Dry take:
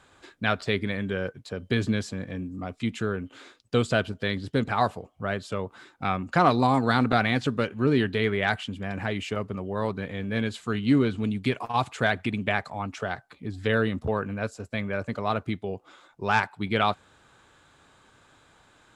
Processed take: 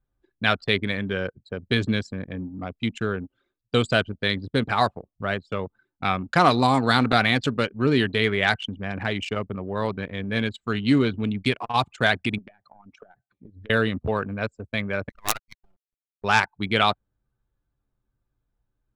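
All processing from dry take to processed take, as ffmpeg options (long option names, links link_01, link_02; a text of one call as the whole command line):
ffmpeg -i in.wav -filter_complex "[0:a]asettb=1/sr,asplit=3[link_01][link_02][link_03];[link_01]atrim=end=12.384[link_04];[link_02]atrim=start=12.38:end=13.7,asetpts=PTS-STARTPTS,afade=type=in:duration=0.004:curve=qsin,afade=type=out:start_time=1.316:duration=0.004:curve=qsin,highpass=87,acompressor=threshold=-37dB:ratio=20:attack=3.2:release=140:knee=1:detection=peak[link_05];[link_03]atrim=start=13.696[link_06];[link_04][link_05]acrossfade=duration=0.004:curve1=hsin:curve2=qsin[link_07];[link_07][link_06]acrossfade=duration=0.004:curve1=qsin:curve2=hsin,asettb=1/sr,asplit=3[link_08][link_09][link_10];[link_08]atrim=end=15.094[link_11];[link_09]atrim=start=15.09:end=16.24,asetpts=PTS-STARTPTS,afade=type=in:duration=0.004:curve=qsin,afade=type=out:start_time=1.146:duration=0.004:curve=qsin,highpass=frequency=740:width=0.5412,highpass=frequency=740:width=1.3066,acrusher=bits=4:dc=4:mix=0:aa=0.000001[link_12];[link_10]atrim=start=16.236[link_13];[link_11][link_12]acrossfade=duration=0.004:curve1=hsin:curve2=qsin[link_14];[link_14][link_13]acrossfade=duration=0.004:curve1=qsin:curve2=hsin,anlmdn=6.31,highshelf=frequency=2700:gain=10.5,volume=1.5dB" out.wav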